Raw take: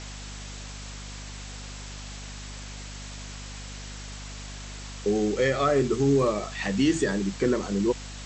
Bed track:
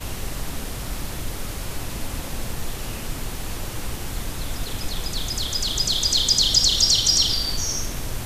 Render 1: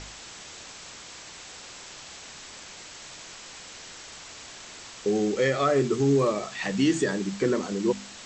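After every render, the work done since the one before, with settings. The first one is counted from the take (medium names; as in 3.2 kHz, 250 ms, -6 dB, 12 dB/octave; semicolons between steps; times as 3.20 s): de-hum 50 Hz, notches 5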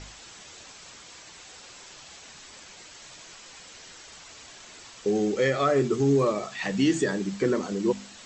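noise reduction 6 dB, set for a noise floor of -45 dBFS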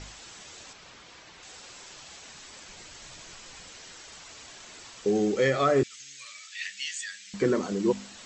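0.73–1.43 s: distance through air 110 m; 2.68–3.71 s: bass shelf 130 Hz +10 dB; 5.83–7.34 s: inverse Chebyshev high-pass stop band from 960 Hz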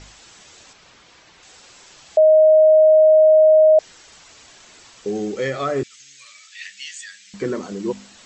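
2.17–3.79 s: bleep 625 Hz -8 dBFS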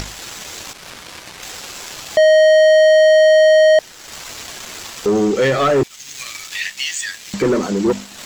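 waveshaping leveller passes 3; upward compressor, threshold -20 dBFS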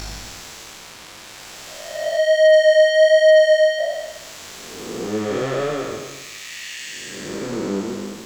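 spectral blur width 528 ms; chorus 1.2 Hz, delay 17.5 ms, depth 4 ms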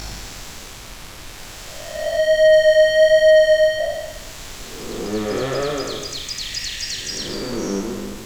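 add bed track -10.5 dB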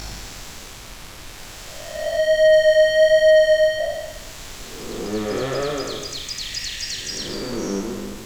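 trim -1.5 dB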